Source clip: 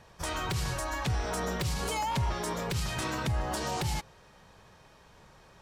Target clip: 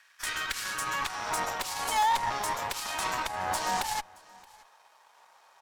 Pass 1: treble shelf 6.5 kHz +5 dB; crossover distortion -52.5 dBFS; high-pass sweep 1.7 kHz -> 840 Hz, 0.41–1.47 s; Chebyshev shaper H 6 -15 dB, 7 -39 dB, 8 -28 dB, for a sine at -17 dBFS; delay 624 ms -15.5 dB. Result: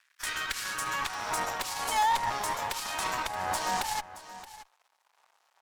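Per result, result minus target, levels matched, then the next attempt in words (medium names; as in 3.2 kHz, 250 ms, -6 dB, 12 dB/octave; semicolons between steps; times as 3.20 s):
echo-to-direct +9 dB; crossover distortion: distortion +8 dB
treble shelf 6.5 kHz +5 dB; crossover distortion -52.5 dBFS; high-pass sweep 1.7 kHz -> 840 Hz, 0.41–1.47 s; Chebyshev shaper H 6 -15 dB, 7 -39 dB, 8 -28 dB, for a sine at -17 dBFS; delay 624 ms -24.5 dB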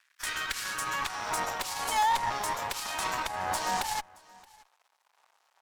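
crossover distortion: distortion +8 dB
treble shelf 6.5 kHz +5 dB; crossover distortion -62 dBFS; high-pass sweep 1.7 kHz -> 840 Hz, 0.41–1.47 s; Chebyshev shaper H 6 -15 dB, 7 -39 dB, 8 -28 dB, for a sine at -17 dBFS; delay 624 ms -24.5 dB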